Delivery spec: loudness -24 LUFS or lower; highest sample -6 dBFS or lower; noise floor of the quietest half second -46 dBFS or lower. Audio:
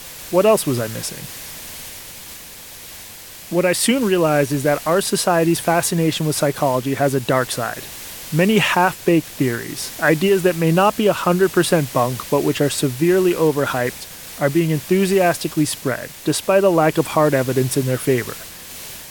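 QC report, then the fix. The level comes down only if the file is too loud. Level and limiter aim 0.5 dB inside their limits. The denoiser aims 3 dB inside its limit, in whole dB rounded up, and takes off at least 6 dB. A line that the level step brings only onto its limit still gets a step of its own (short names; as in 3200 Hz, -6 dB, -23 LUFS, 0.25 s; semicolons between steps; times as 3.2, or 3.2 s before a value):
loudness -18.0 LUFS: fail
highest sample -3.0 dBFS: fail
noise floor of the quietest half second -38 dBFS: fail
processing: denoiser 6 dB, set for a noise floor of -38 dBFS; gain -6.5 dB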